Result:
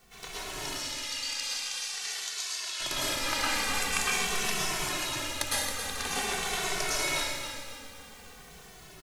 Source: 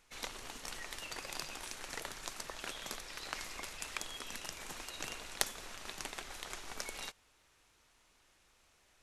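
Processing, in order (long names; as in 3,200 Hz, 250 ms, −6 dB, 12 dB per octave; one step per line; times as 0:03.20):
automatic gain control gain up to 9 dB
background noise pink −57 dBFS
0:00.65–0:02.80: resonant band-pass 5,000 Hz, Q 1.1
repeating echo 272 ms, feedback 45%, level −9 dB
dense smooth reverb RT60 1.2 s, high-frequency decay 0.9×, pre-delay 95 ms, DRR −8 dB
barber-pole flanger 2.2 ms −0.47 Hz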